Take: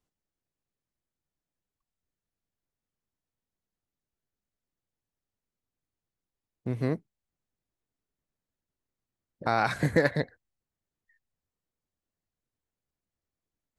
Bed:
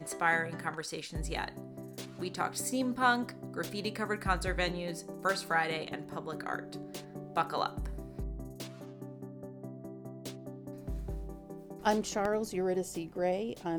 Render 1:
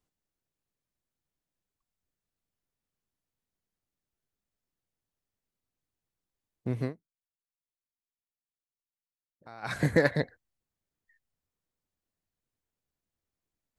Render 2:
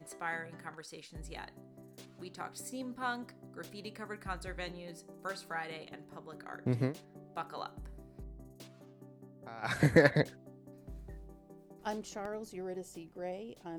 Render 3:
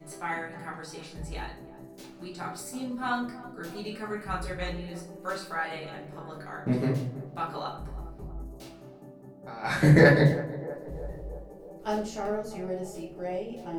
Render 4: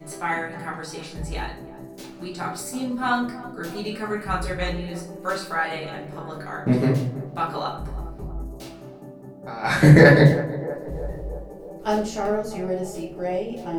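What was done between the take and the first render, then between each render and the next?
6.81–9.74 dip -21.5 dB, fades 0.12 s
add bed -9.5 dB
narrowing echo 0.325 s, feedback 69%, band-pass 570 Hz, level -14.5 dB; shoebox room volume 56 m³, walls mixed, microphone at 1.2 m
gain +7 dB; limiter -1 dBFS, peak gain reduction 3 dB

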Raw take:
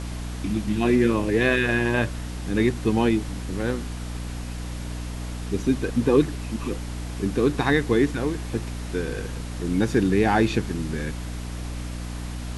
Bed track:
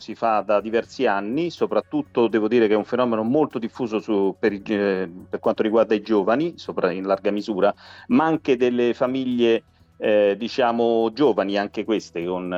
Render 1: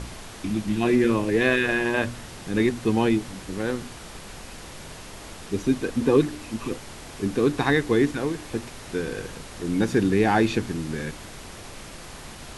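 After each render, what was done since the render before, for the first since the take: de-hum 60 Hz, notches 5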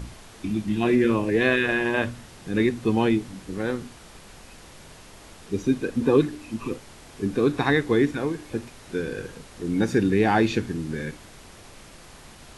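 noise print and reduce 6 dB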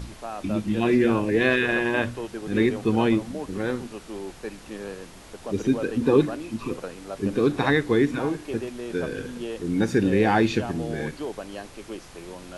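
add bed track -15 dB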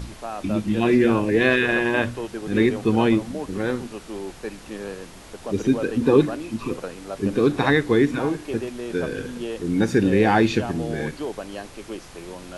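gain +2.5 dB

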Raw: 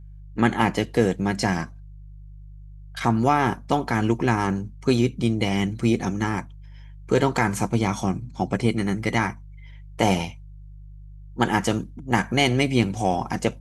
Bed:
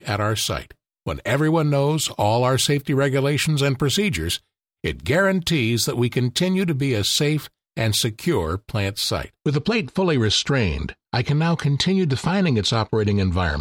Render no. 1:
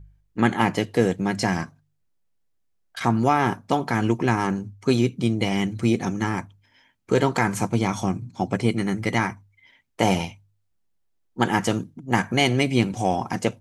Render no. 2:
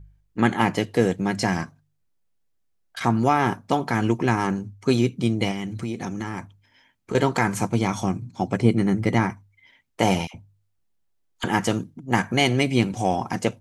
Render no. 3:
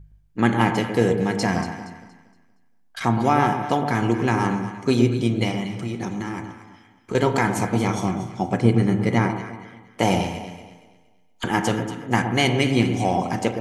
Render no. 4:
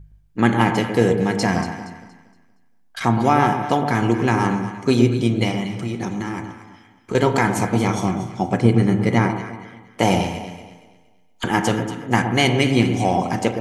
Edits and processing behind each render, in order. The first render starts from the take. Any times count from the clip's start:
de-hum 50 Hz, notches 3
5.51–7.15 compressor 5:1, threshold -25 dBFS; 8.6–9.3 tilt shelf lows +4.5 dB, about 920 Hz; 10.27–11.44 dispersion lows, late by 71 ms, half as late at 890 Hz
echo with dull and thin repeats by turns 0.117 s, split 1100 Hz, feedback 57%, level -7 dB; spring tank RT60 1.1 s, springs 34 ms, chirp 50 ms, DRR 8.5 dB
gain +2.5 dB; limiter -2 dBFS, peak gain reduction 1.5 dB

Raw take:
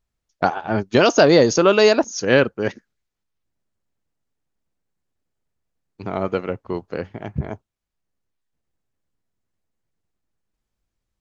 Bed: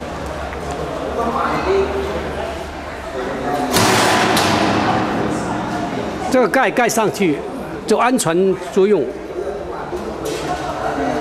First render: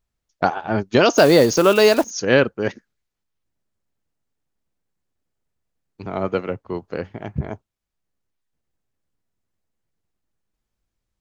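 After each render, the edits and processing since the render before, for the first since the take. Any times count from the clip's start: 1.13–2.12 block floating point 5-bit; 6.06–6.82 three-band expander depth 40%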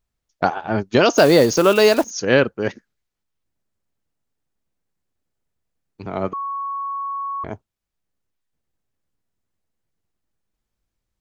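6.33–7.44 bleep 1110 Hz -23.5 dBFS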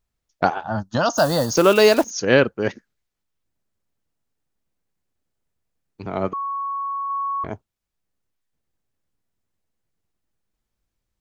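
0.63–1.55 fixed phaser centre 960 Hz, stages 4; 7.08–7.48 doubler 19 ms -12 dB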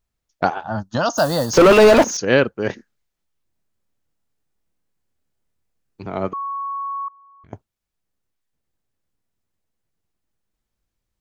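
1.53–2.17 overdrive pedal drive 33 dB, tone 1100 Hz, clips at -2 dBFS; 2.67–6.03 doubler 26 ms -4 dB; 7.08–7.53 passive tone stack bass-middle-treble 6-0-2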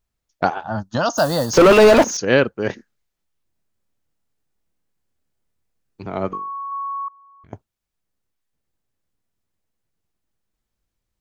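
6.28–6.72 flutter echo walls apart 3.6 m, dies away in 0.29 s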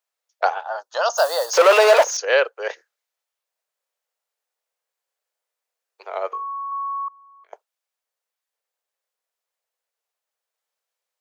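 steep high-pass 470 Hz 48 dB/oct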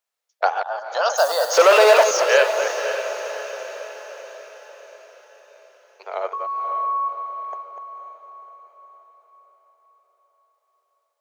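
reverse delay 0.132 s, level -7.5 dB; diffused feedback echo 0.548 s, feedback 52%, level -9.5 dB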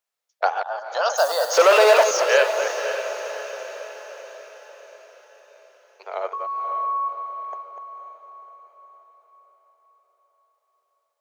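gain -1.5 dB

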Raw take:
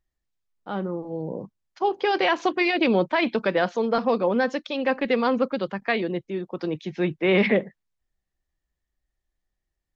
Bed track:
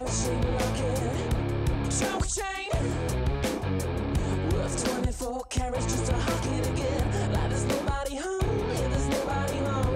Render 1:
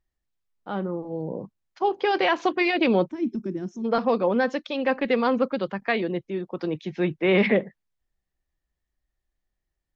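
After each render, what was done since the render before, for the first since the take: 3.1–3.85 spectral gain 400–5200 Hz -25 dB; high shelf 5300 Hz -5 dB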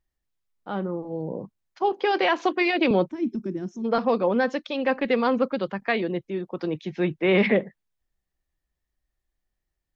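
1.92–2.91 steep high-pass 180 Hz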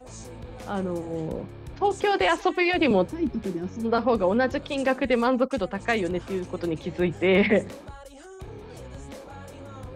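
add bed track -13.5 dB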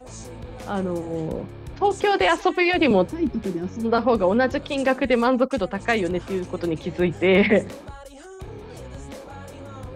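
gain +3 dB

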